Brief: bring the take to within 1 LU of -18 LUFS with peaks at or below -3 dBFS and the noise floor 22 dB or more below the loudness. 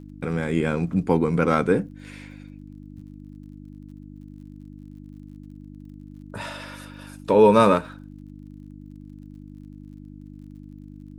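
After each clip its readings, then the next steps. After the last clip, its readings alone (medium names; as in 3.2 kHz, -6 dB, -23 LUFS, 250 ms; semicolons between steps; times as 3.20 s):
tick rate 46 per s; hum 50 Hz; highest harmonic 300 Hz; hum level -39 dBFS; loudness -21.0 LUFS; peak level -3.0 dBFS; loudness target -18.0 LUFS
-> de-click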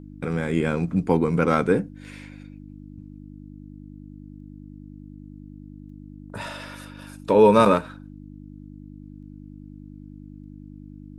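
tick rate 0.45 per s; hum 50 Hz; highest harmonic 300 Hz; hum level -39 dBFS
-> de-hum 50 Hz, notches 6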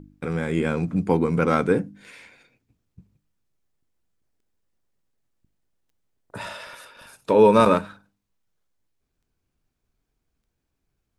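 hum not found; loudness -20.5 LUFS; peak level -3.0 dBFS; loudness target -18.0 LUFS
-> trim +2.5 dB; peak limiter -3 dBFS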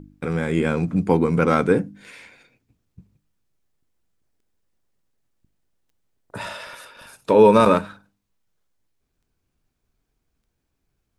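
loudness -18.5 LUFS; peak level -3.0 dBFS; noise floor -76 dBFS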